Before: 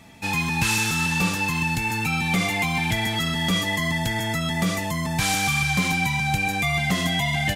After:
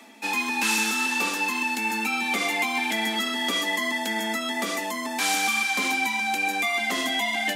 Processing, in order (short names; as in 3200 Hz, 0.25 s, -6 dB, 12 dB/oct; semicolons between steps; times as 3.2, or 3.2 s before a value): Chebyshev high-pass 210 Hz, order 8; reverse; upward compressor, threshold -33 dBFS; reverse